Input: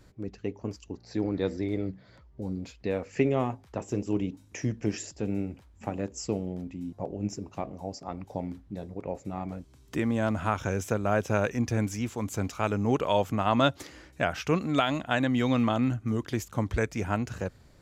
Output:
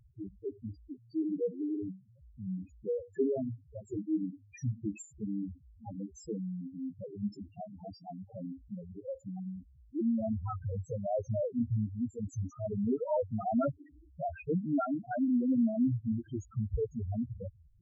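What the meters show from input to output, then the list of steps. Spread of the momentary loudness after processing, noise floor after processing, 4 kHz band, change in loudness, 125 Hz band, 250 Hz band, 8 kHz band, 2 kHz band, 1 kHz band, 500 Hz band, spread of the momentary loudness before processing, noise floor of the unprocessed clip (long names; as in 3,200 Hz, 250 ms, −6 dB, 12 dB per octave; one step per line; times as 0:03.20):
15 LU, −61 dBFS, below −25 dB, −5.0 dB, −6.0 dB, −3.5 dB, −14.0 dB, below −20 dB, −10.0 dB, −6.0 dB, 13 LU, −57 dBFS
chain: spectral peaks only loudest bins 2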